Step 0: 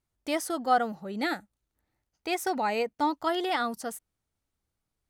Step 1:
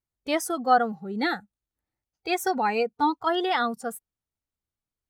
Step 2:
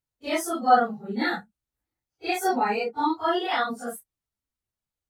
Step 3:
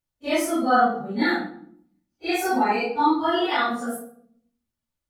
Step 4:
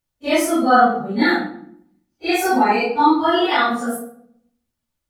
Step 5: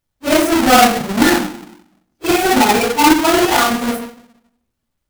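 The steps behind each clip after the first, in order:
spectral noise reduction 13 dB; gain +4 dB
phase scrambler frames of 0.1 s
shoebox room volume 960 m³, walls furnished, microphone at 2.5 m
tape echo 0.131 s, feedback 32%, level -22 dB, low-pass 2100 Hz; gain +5.5 dB
half-waves squared off

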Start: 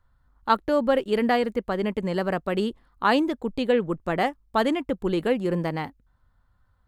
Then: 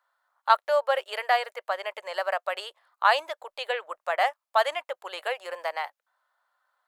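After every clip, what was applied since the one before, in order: elliptic high-pass 600 Hz, stop band 60 dB; gain +2 dB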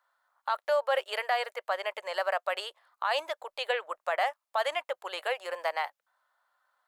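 limiter -18 dBFS, peak gain reduction 12 dB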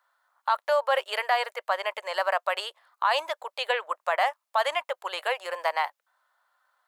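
HPF 430 Hz 6 dB/oct; dynamic EQ 1000 Hz, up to +6 dB, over -47 dBFS, Q 4.4; gain +4 dB

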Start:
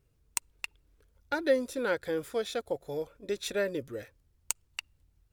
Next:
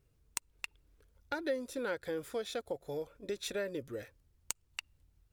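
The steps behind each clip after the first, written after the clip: compressor 2:1, threshold -36 dBFS, peak gain reduction 9 dB; gain -1 dB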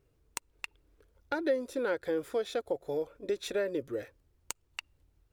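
EQ curve 210 Hz 0 dB, 330 Hz +7 dB, 8600 Hz -2 dB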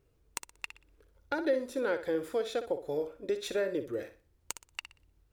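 flutter echo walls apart 10.5 m, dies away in 0.34 s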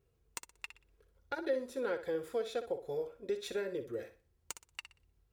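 notch comb 300 Hz; gain -3.5 dB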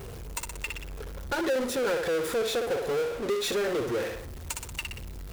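power-law curve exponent 0.35

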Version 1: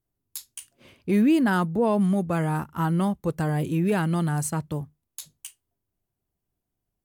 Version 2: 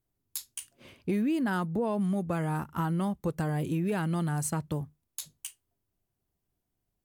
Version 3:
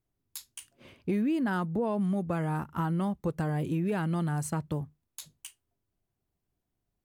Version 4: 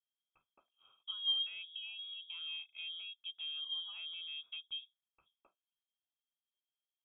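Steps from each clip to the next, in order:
compressor 4:1, threshold -27 dBFS, peak gain reduction 9 dB
high shelf 4400 Hz -6.5 dB
vowel filter u; inverted band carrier 3500 Hz; gain -2.5 dB

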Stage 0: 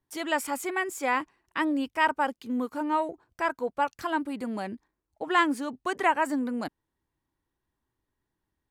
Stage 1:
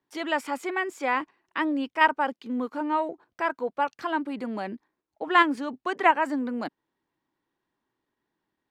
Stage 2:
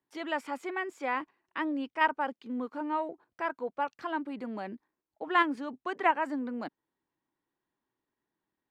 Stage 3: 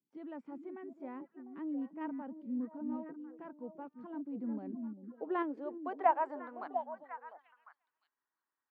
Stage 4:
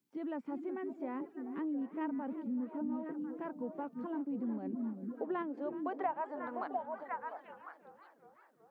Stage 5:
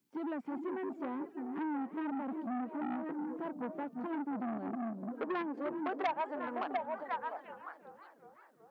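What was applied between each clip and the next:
three-band isolator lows -20 dB, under 160 Hz, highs -15 dB, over 5200 Hz; in parallel at -2 dB: level quantiser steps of 22 dB
high shelf 5100 Hz -7 dB; gain -5.5 dB
band-pass sweep 200 Hz -> 1300 Hz, 4.26–6.93; delay with a stepping band-pass 0.35 s, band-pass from 220 Hz, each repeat 1.4 oct, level -3.5 dB; gain +1.5 dB
compressor 4:1, threshold -43 dBFS, peak gain reduction 17.5 dB; warbling echo 0.373 s, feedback 63%, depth 188 cents, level -16.5 dB; gain +7.5 dB
core saturation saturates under 1600 Hz; gain +3.5 dB

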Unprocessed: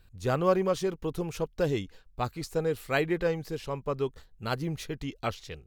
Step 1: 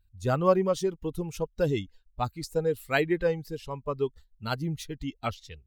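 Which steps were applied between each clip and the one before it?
per-bin expansion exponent 1.5; gain +3.5 dB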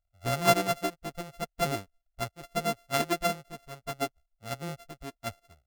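sample sorter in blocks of 64 samples; upward expander 1.5:1, over -46 dBFS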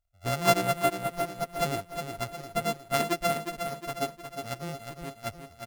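feedback echo 0.36 s, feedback 49%, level -7 dB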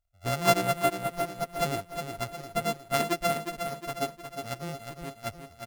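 nothing audible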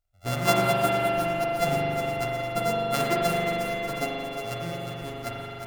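spring tank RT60 3.4 s, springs 41 ms, chirp 20 ms, DRR -4 dB

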